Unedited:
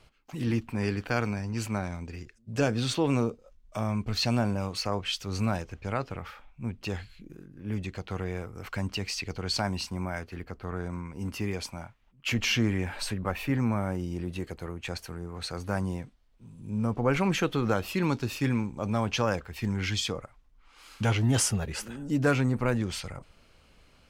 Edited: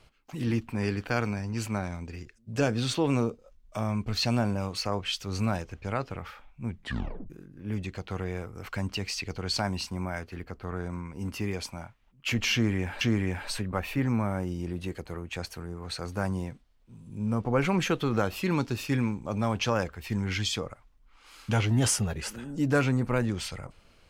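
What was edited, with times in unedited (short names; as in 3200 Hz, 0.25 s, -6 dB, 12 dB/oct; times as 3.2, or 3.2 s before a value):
6.69 tape stop 0.61 s
12.53–13.01 loop, 2 plays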